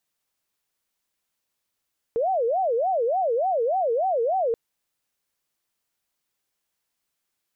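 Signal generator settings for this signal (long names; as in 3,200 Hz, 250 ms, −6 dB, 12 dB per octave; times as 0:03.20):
siren wail 453–771 Hz 3.4 per second sine −20 dBFS 2.38 s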